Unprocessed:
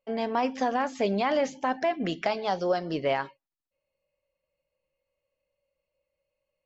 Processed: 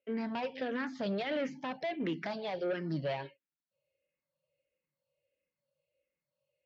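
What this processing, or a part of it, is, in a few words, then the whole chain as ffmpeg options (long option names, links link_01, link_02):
barber-pole phaser into a guitar amplifier: -filter_complex "[0:a]asplit=2[link_01][link_02];[link_02]afreqshift=-1.5[link_03];[link_01][link_03]amix=inputs=2:normalize=1,asoftclip=type=tanh:threshold=-28dB,highpass=100,equalizer=frequency=150:width_type=q:width=4:gain=7,equalizer=frequency=780:width_type=q:width=4:gain=-8,equalizer=frequency=1100:width_type=q:width=4:gain=-6,lowpass=frequency=4400:width=0.5412,lowpass=frequency=4400:width=1.3066"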